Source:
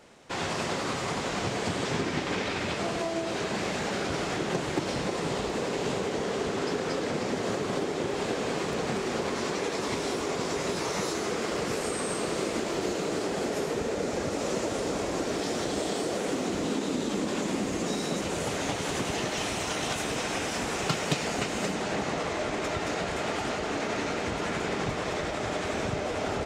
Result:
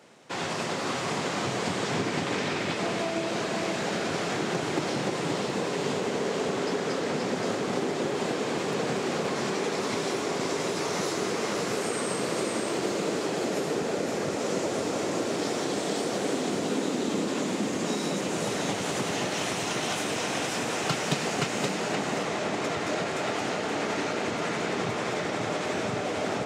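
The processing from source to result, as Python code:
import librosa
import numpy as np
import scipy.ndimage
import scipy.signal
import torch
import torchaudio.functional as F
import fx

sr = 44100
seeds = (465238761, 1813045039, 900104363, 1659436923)

p1 = scipy.signal.sosfilt(scipy.signal.butter(4, 110.0, 'highpass', fs=sr, output='sos'), x)
y = p1 + fx.echo_single(p1, sr, ms=523, db=-4.5, dry=0)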